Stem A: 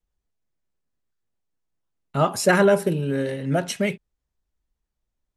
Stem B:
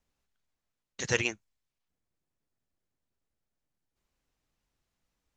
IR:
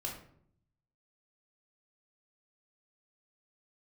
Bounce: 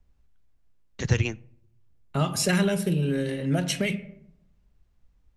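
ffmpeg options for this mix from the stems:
-filter_complex "[0:a]adynamicequalizer=threshold=0.0178:dfrequency=2500:dqfactor=0.82:tfrequency=2500:tqfactor=0.82:attack=5:release=100:ratio=0.375:range=3:mode=boostabove:tftype=bell,volume=0.794,asplit=2[s0][s1];[s1]volume=0.355[s2];[1:a]aemphasis=mode=reproduction:type=bsi,volume=1.41,asplit=2[s3][s4];[s4]volume=0.075[s5];[2:a]atrim=start_sample=2205[s6];[s2][s5]amix=inputs=2:normalize=0[s7];[s7][s6]afir=irnorm=-1:irlink=0[s8];[s0][s3][s8]amix=inputs=3:normalize=0,lowshelf=f=220:g=3.5,acrossover=split=230|3000[s9][s10][s11];[s10]acompressor=threshold=0.0398:ratio=6[s12];[s9][s12][s11]amix=inputs=3:normalize=0"

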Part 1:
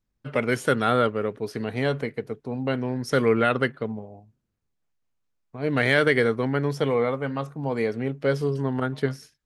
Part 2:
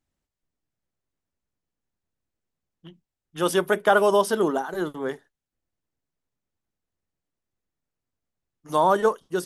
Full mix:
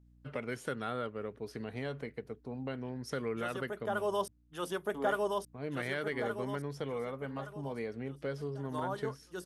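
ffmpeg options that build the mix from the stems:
-filter_complex "[0:a]acompressor=threshold=0.0398:ratio=2,volume=0.335,asplit=2[s0][s1];[1:a]acrossover=split=900[s2][s3];[s2]aeval=exprs='val(0)*(1-0.5/2+0.5/2*cos(2*PI*5.4*n/s))':c=same[s4];[s3]aeval=exprs='val(0)*(1-0.5/2-0.5/2*cos(2*PI*5.4*n/s))':c=same[s5];[s4][s5]amix=inputs=2:normalize=0,aeval=exprs='val(0)+0.00178*(sin(2*PI*60*n/s)+sin(2*PI*2*60*n/s)/2+sin(2*PI*3*60*n/s)/3+sin(2*PI*4*60*n/s)/4+sin(2*PI*5*60*n/s)/5)':c=same,volume=0.531,asplit=3[s6][s7][s8];[s6]atrim=end=4.28,asetpts=PTS-STARTPTS,afade=t=out:st=4.276:d=0.004:c=hsin[s9];[s7]atrim=start=4.28:end=4.93,asetpts=PTS-STARTPTS,volume=0[s10];[s8]atrim=start=4.93,asetpts=PTS-STARTPTS,afade=t=in:d=0.004:c=hsin[s11];[s9][s10][s11]concat=n=3:v=0:a=1,asplit=2[s12][s13];[s13]volume=0.501[s14];[s1]apad=whole_len=417126[s15];[s12][s15]sidechaincompress=threshold=0.00708:ratio=12:attack=16:release=767[s16];[s14]aecho=0:1:1170|2340|3510|4680|5850:1|0.39|0.152|0.0593|0.0231[s17];[s0][s16][s17]amix=inputs=3:normalize=0"

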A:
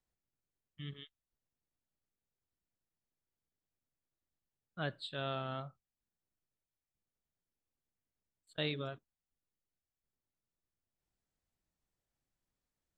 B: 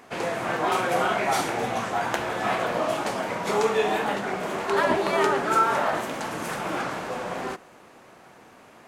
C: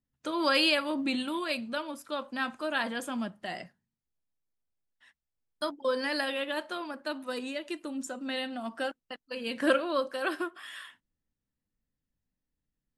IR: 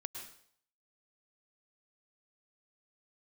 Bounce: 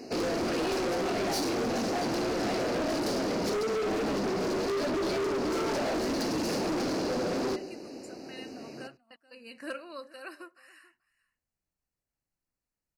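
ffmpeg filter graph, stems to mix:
-filter_complex "[0:a]alimiter=level_in=3.35:limit=0.0631:level=0:latency=1,volume=0.299,volume=0.794[s0];[1:a]firequalizer=gain_entry='entry(140,0);entry(280,12);entry(1100,-13);entry(4800,12);entry(7800,-5)':delay=0.05:min_phase=1,alimiter=limit=0.2:level=0:latency=1:release=42,acompressor=threshold=0.0891:ratio=6,volume=1.12,asplit=2[s1][s2];[s2]volume=0.282[s3];[2:a]adynamicequalizer=threshold=0.00891:dfrequency=1700:dqfactor=0.7:tfrequency=1700:tqfactor=0.7:attack=5:release=100:ratio=0.375:range=3:mode=boostabove:tftype=highshelf,volume=0.2,asplit=3[s4][s5][s6];[s5]volume=0.1[s7];[s6]apad=whole_len=572211[s8];[s0][s8]sidechaincompress=threshold=0.00224:ratio=3:attack=16:release=974[s9];[3:a]atrim=start_sample=2205[s10];[s3][s10]afir=irnorm=-1:irlink=0[s11];[s7]aecho=0:1:435:1[s12];[s9][s1][s4][s11][s12]amix=inputs=5:normalize=0,asuperstop=centerf=3400:order=20:qfactor=3.6,volume=25.1,asoftclip=hard,volume=0.0398"

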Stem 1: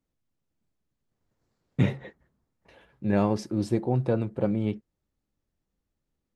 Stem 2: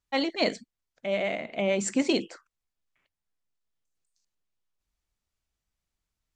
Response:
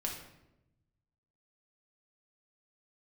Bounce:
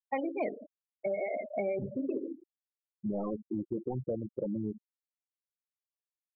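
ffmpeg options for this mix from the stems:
-filter_complex "[0:a]highpass=f=250:p=1,dynaudnorm=f=270:g=7:m=3.35,aeval=exprs='0.282*(abs(mod(val(0)/0.282+3,4)-2)-1)':c=same,volume=0.335,asplit=3[s0][s1][s2];[s1]volume=0.141[s3];[1:a]highpass=220,equalizer=f=390:t=o:w=0.62:g=3,volume=1.33,asplit=2[s4][s5];[s5]volume=0.473[s6];[s2]apad=whole_len=280284[s7];[s4][s7]sidechaincompress=threshold=0.00447:ratio=8:attack=16:release=562[s8];[2:a]atrim=start_sample=2205[s9];[s3][s6]amix=inputs=2:normalize=0[s10];[s10][s9]afir=irnorm=-1:irlink=0[s11];[s0][s8][s11]amix=inputs=3:normalize=0,lowpass=2100,afftfilt=real='re*gte(hypot(re,im),0.112)':imag='im*gte(hypot(re,im),0.112)':win_size=1024:overlap=0.75,acompressor=threshold=0.0282:ratio=6"

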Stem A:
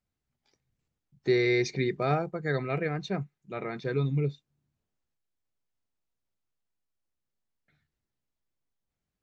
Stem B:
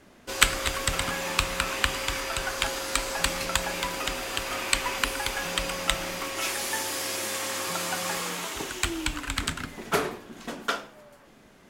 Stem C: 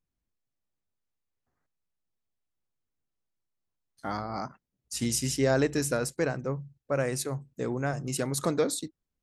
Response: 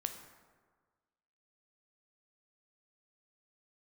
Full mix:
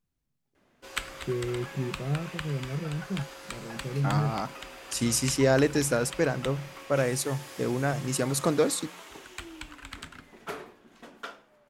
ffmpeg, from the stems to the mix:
-filter_complex "[0:a]bandpass=f=160:t=q:w=1.4:csg=0,volume=1.26[s0];[1:a]bass=f=250:g=-3,treble=f=4000:g=-5,adelay=550,volume=0.266[s1];[2:a]volume=1.33[s2];[s0][s1][s2]amix=inputs=3:normalize=0"

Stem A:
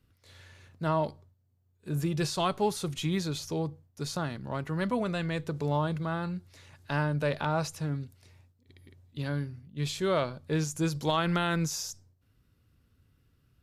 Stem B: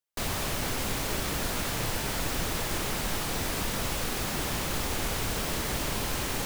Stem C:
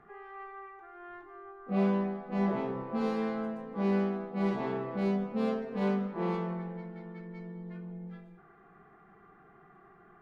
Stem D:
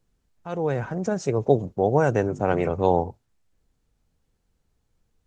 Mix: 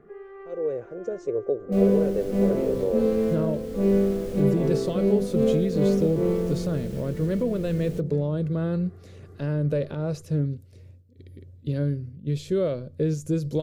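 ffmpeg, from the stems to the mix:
-filter_complex "[0:a]adelay=2500,volume=0.794[s0];[1:a]adelay=1550,volume=0.15[s1];[2:a]volume=0.794[s2];[3:a]lowshelf=f=270:t=q:w=1.5:g=-11,volume=0.133[s3];[s0][s1][s3]amix=inputs=3:normalize=0,lowshelf=f=220:g=5.5,alimiter=level_in=1.26:limit=0.0631:level=0:latency=1:release=451,volume=0.794,volume=1[s4];[s2][s4]amix=inputs=2:normalize=0,lowshelf=f=660:t=q:w=3:g=8"

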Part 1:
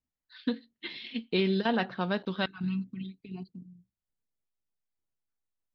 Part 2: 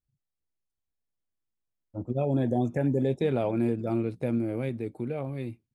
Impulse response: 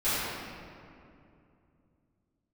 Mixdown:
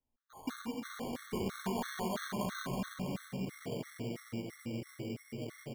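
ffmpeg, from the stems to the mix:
-filter_complex "[0:a]volume=0.562,asplit=3[s0][s1][s2];[s1]volume=0.708[s3];[1:a]adelay=250,volume=0.168,asplit=2[s4][s5];[s5]volume=0.501[s6];[s2]apad=whole_len=264533[s7];[s4][s7]sidechaingate=range=0.0224:threshold=0.00282:ratio=16:detection=peak[s8];[2:a]atrim=start_sample=2205[s9];[s3][s6]amix=inputs=2:normalize=0[s10];[s10][s9]afir=irnorm=-1:irlink=0[s11];[s0][s8][s11]amix=inputs=3:normalize=0,acrossover=split=120|930[s12][s13][s14];[s12]acompressor=threshold=0.00501:ratio=4[s15];[s13]acompressor=threshold=0.0126:ratio=4[s16];[s14]acompressor=threshold=0.0126:ratio=4[s17];[s15][s16][s17]amix=inputs=3:normalize=0,acrusher=samples=17:mix=1:aa=0.000001,afftfilt=real='re*gt(sin(2*PI*3*pts/sr)*(1-2*mod(floor(b*sr/1024/1100),2)),0)':imag='im*gt(sin(2*PI*3*pts/sr)*(1-2*mod(floor(b*sr/1024/1100),2)),0)':win_size=1024:overlap=0.75"

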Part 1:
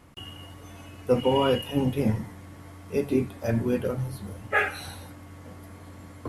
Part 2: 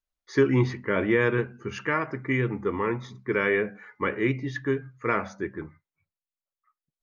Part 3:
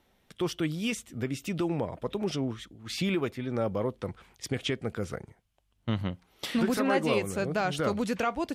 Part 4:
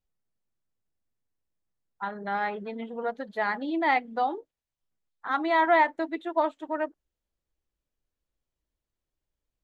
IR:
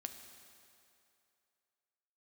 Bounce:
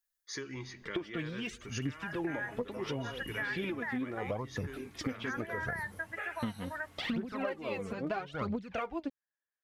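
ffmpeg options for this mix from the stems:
-filter_complex "[0:a]tiltshelf=f=970:g=-4.5,acompressor=threshold=0.0282:ratio=2.5,adelay=1650,volume=0.299[s0];[1:a]acompressor=threshold=0.0282:ratio=2.5,crystalizer=i=8.5:c=0,volume=0.168,asplit=2[s1][s2];[s2]volume=0.376[s3];[2:a]lowpass=3300,tremolo=f=2.9:d=0.69,aphaser=in_gain=1:out_gain=1:delay=4.6:decay=0.68:speed=0.75:type=triangular,adelay=550,volume=1.33[s4];[3:a]highpass=610,acompressor=threshold=0.0355:ratio=6,lowpass=f=1700:t=q:w=13,volume=0.282[s5];[4:a]atrim=start_sample=2205[s6];[s3][s6]afir=irnorm=-1:irlink=0[s7];[s0][s1][s4][s5][s7]amix=inputs=5:normalize=0,acompressor=threshold=0.0224:ratio=6"

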